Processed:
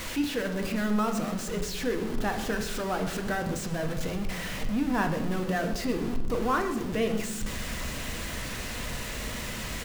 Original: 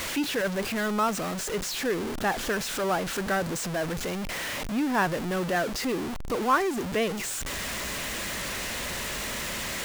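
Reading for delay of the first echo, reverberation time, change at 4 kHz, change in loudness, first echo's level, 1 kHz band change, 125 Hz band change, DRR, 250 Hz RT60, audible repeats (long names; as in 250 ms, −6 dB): 123 ms, 0.95 s, −4.5 dB, −2.0 dB, −16.0 dB, −4.0 dB, +2.0 dB, 4.0 dB, 1.8 s, 1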